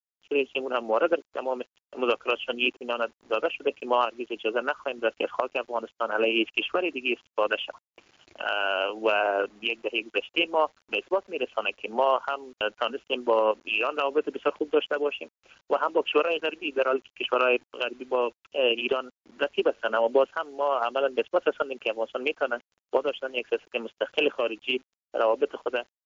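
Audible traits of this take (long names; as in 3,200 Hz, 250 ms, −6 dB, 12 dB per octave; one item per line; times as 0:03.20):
tremolo saw up 0.74 Hz, depth 50%
a quantiser's noise floor 10 bits, dither none
WMA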